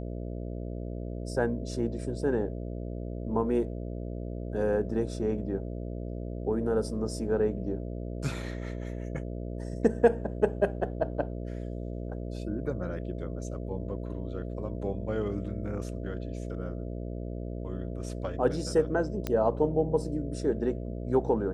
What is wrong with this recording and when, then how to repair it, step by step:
mains buzz 60 Hz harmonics 11 −36 dBFS
0:19.27: click −16 dBFS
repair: click removal
hum removal 60 Hz, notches 11

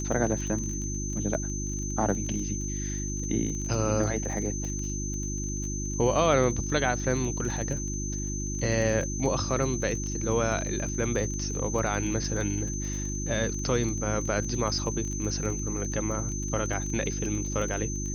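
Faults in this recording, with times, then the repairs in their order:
surface crackle 23 per second −33 dBFS
mains hum 50 Hz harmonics 7 −33 dBFS
whistle 6,200 Hz −35 dBFS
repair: click removal
notch filter 6,200 Hz, Q 30
hum removal 50 Hz, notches 7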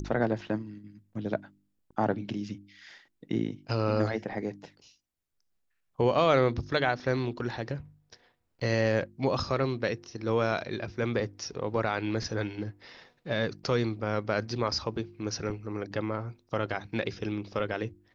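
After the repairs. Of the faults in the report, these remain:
none of them is left

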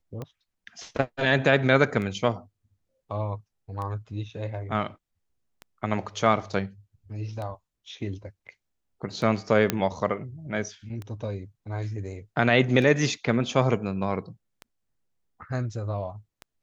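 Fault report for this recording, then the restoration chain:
scratch tick 33 1/3 rpm −23 dBFS
0:09.70: click −7 dBFS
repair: click removal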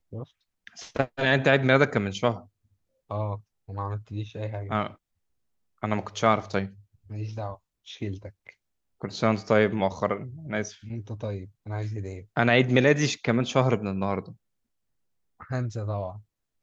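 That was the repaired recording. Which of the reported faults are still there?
none of them is left

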